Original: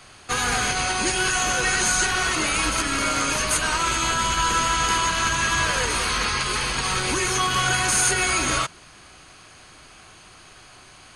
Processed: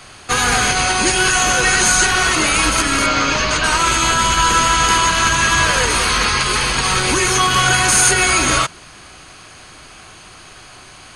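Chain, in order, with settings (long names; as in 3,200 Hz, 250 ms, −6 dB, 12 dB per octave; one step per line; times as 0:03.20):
0:03.06–0:03.64: low-pass filter 5,800 Hz 24 dB per octave
level +7.5 dB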